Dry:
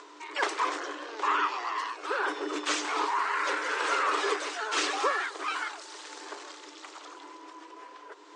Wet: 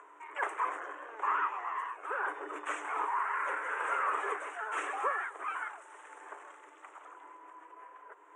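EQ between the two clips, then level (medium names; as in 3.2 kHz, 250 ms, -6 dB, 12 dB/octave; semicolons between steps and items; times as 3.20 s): high-pass 580 Hz 12 dB/octave; Butterworth band-stop 4.6 kHz, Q 0.59; -3.0 dB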